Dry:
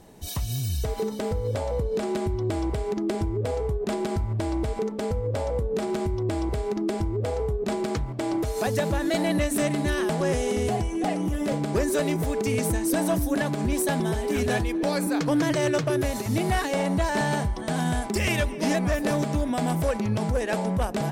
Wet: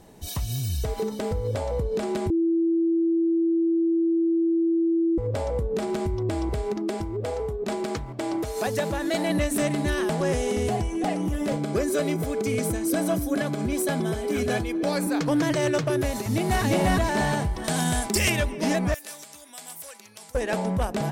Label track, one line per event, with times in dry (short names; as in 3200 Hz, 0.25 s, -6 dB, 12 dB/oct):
2.300000	5.180000	bleep 332 Hz -19 dBFS
6.750000	9.300000	low shelf 160 Hz -7.5 dB
11.560000	14.870000	notch comb 910 Hz
16.150000	16.630000	echo throw 0.35 s, feedback 40%, level 0 dB
17.640000	18.300000	high shelf 3400 Hz +11 dB
18.940000	20.350000	differentiator